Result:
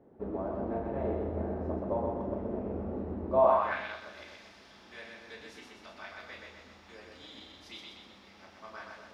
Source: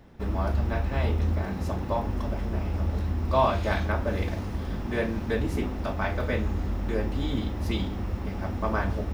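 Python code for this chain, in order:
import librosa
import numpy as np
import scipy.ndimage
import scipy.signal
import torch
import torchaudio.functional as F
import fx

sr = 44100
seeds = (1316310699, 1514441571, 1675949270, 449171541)

y = fx.high_shelf(x, sr, hz=2600.0, db=-10.0)
y = fx.doubler(y, sr, ms=35.0, db=-7)
y = fx.echo_split(y, sr, split_hz=320.0, low_ms=359, high_ms=125, feedback_pct=52, wet_db=-3)
y = fx.filter_sweep_bandpass(y, sr, from_hz=430.0, to_hz=4800.0, start_s=3.33, end_s=4.02, q=1.4)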